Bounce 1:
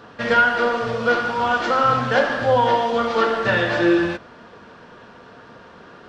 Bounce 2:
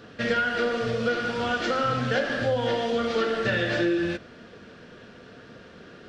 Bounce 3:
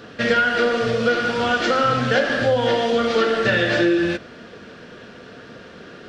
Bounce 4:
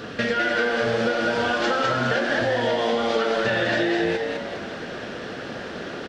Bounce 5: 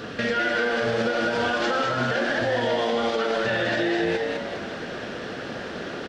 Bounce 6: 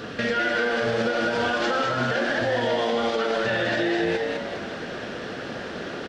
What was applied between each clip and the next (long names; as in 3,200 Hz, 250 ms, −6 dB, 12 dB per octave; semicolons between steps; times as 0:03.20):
parametric band 960 Hz −14 dB 0.8 octaves; downward compressor, threshold −21 dBFS, peak gain reduction 7.5 dB
low-shelf EQ 140 Hz −5 dB; level +7 dB
downward compressor 4 to 1, threshold −29 dBFS, peak gain reduction 12.5 dB; on a send: echo with shifted repeats 204 ms, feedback 41%, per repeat +110 Hz, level −3.5 dB; on the sum: level +5.5 dB
brickwall limiter −15 dBFS, peak gain reduction 5 dB
Ogg Vorbis 192 kbit/s 44,100 Hz